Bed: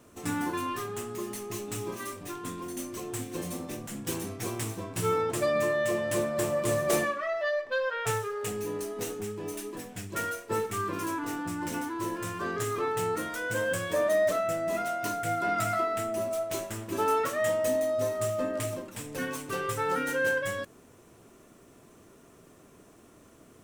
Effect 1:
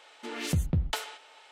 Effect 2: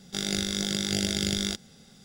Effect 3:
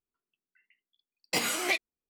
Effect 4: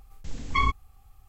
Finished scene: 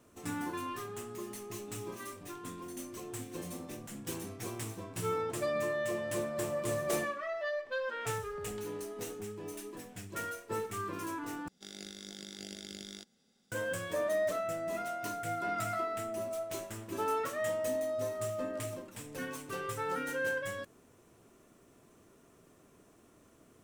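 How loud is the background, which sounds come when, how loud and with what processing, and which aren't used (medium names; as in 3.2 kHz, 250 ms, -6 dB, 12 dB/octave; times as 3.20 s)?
bed -6.5 dB
7.65 s: add 1 -18 dB + compression, threshold -32 dBFS
11.48 s: replace with 2 -17.5 dB + resonant low shelf 180 Hz -9 dB, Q 1.5
not used: 3, 4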